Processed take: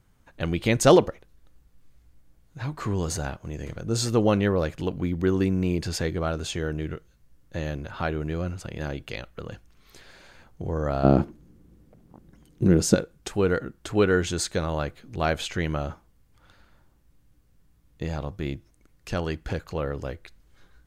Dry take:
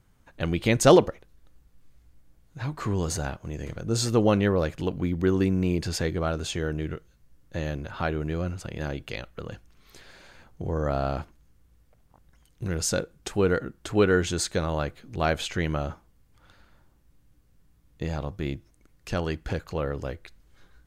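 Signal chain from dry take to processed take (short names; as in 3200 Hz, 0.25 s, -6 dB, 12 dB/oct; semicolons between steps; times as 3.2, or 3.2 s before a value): 11.03–12.94 small resonant body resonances 210/320 Hz, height 18 dB -> 14 dB, ringing for 25 ms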